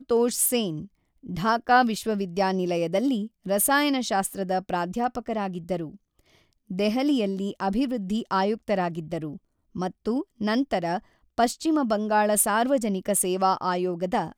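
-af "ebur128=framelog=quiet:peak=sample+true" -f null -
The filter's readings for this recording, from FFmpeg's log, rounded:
Integrated loudness:
  I:         -25.2 LUFS
  Threshold: -35.7 LUFS
Loudness range:
  LRA:         4.4 LU
  Threshold: -46.1 LUFS
  LRA low:   -28.4 LUFS
  LRA high:  -24.0 LUFS
Sample peak:
  Peak:       -7.8 dBFS
True peak:
  Peak:       -7.8 dBFS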